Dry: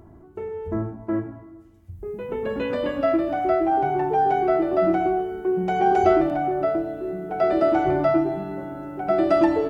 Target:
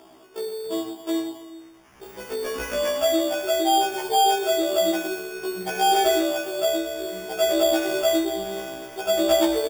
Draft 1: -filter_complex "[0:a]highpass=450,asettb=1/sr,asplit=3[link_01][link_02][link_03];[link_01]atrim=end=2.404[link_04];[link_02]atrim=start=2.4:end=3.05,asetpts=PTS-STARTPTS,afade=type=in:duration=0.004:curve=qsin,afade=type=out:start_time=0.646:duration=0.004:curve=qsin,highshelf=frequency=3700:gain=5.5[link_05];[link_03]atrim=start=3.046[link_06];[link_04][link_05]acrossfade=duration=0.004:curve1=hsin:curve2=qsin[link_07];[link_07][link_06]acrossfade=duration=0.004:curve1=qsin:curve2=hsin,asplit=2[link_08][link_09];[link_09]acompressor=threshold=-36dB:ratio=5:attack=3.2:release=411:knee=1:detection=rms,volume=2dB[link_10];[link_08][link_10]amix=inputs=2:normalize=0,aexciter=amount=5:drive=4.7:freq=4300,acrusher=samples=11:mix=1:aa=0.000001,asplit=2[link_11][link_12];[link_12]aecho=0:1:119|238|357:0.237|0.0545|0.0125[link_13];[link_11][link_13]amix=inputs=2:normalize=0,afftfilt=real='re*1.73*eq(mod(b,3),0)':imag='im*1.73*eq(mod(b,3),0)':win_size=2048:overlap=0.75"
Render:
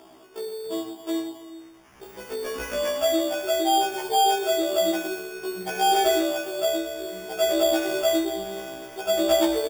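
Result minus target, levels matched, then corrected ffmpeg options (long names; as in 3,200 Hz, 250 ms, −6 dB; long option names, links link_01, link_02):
downward compressor: peak gain reduction +6 dB
-filter_complex "[0:a]highpass=450,asettb=1/sr,asplit=3[link_01][link_02][link_03];[link_01]atrim=end=2.404[link_04];[link_02]atrim=start=2.4:end=3.05,asetpts=PTS-STARTPTS,afade=type=in:duration=0.004:curve=qsin,afade=type=out:start_time=0.646:duration=0.004:curve=qsin,highshelf=frequency=3700:gain=5.5[link_05];[link_03]atrim=start=3.046[link_06];[link_04][link_05]acrossfade=duration=0.004:curve1=hsin:curve2=qsin[link_07];[link_07][link_06]acrossfade=duration=0.004:curve1=qsin:curve2=hsin,asplit=2[link_08][link_09];[link_09]acompressor=threshold=-28.5dB:ratio=5:attack=3.2:release=411:knee=1:detection=rms,volume=2dB[link_10];[link_08][link_10]amix=inputs=2:normalize=0,aexciter=amount=5:drive=4.7:freq=4300,acrusher=samples=11:mix=1:aa=0.000001,asplit=2[link_11][link_12];[link_12]aecho=0:1:119|238|357:0.237|0.0545|0.0125[link_13];[link_11][link_13]amix=inputs=2:normalize=0,afftfilt=real='re*1.73*eq(mod(b,3),0)':imag='im*1.73*eq(mod(b,3),0)':win_size=2048:overlap=0.75"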